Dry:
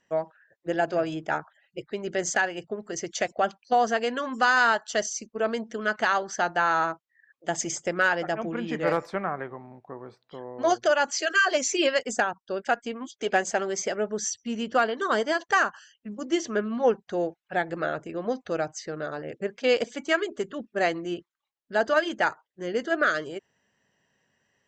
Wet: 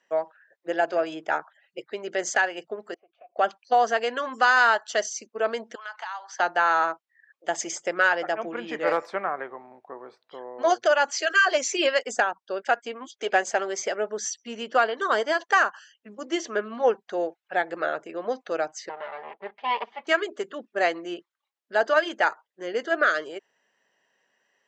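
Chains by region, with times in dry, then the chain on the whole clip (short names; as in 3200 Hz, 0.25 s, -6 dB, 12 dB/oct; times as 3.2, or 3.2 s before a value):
2.94–3.36 compressor 16:1, threshold -36 dBFS + vowel filter a + air absorption 470 m
5.75–6.4 ladder high-pass 820 Hz, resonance 70% + bell 3900 Hz +9 dB 2.2 oct + compressor 4:1, threshold -35 dBFS
18.89–20.07 minimum comb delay 5 ms + speaker cabinet 240–2900 Hz, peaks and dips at 270 Hz -9 dB, 380 Hz -8 dB, 550 Hz -7 dB, 830 Hz +6 dB, 1500 Hz -7 dB, 2500 Hz -4 dB
whole clip: HPF 420 Hz 12 dB/oct; high shelf 7200 Hz -8.5 dB; gain +2.5 dB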